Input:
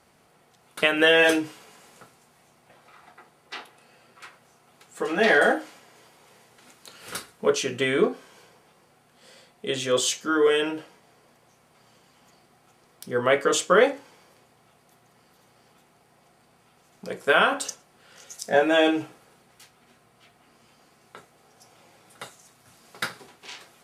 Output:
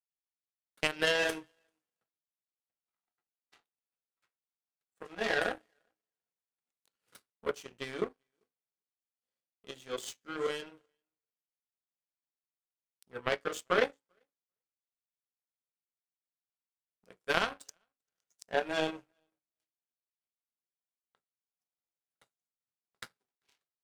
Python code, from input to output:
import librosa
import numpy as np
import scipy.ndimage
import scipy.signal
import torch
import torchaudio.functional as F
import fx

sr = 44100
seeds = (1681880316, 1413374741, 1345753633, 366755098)

y = fx.echo_feedback(x, sr, ms=392, feedback_pct=17, wet_db=-23.0)
y = fx.power_curve(y, sr, exponent=2.0)
y = y * librosa.db_to_amplitude(-3.0)